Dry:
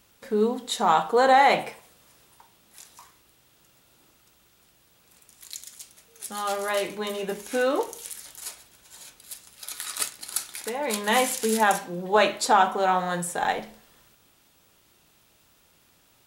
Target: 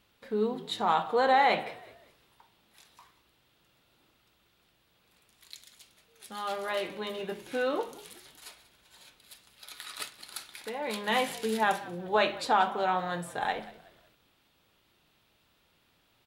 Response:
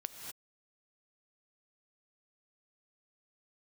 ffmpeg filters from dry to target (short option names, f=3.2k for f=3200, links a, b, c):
-filter_complex "[0:a]highshelf=f=5k:t=q:w=1.5:g=-7.5,asplit=4[a][b][c][d];[b]adelay=186,afreqshift=-50,volume=-19dB[e];[c]adelay=372,afreqshift=-100,volume=-27.9dB[f];[d]adelay=558,afreqshift=-150,volume=-36.7dB[g];[a][e][f][g]amix=inputs=4:normalize=0,volume=-6dB"